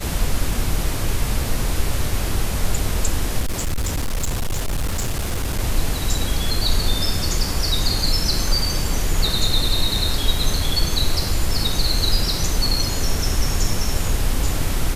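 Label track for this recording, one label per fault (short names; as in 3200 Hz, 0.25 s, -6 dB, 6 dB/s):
3.400000	5.600000	clipped -18 dBFS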